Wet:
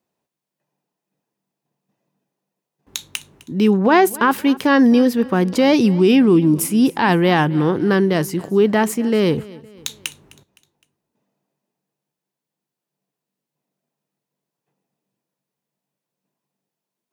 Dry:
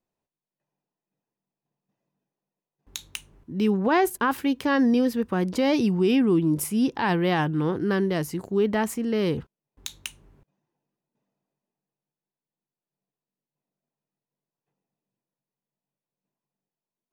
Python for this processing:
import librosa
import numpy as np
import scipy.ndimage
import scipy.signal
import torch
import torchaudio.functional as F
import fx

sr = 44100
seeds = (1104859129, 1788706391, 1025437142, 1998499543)

y = scipy.signal.sosfilt(scipy.signal.butter(2, 110.0, 'highpass', fs=sr, output='sos'), x)
y = fx.echo_feedback(y, sr, ms=257, feedback_pct=45, wet_db=-21)
y = y * librosa.db_to_amplitude(8.0)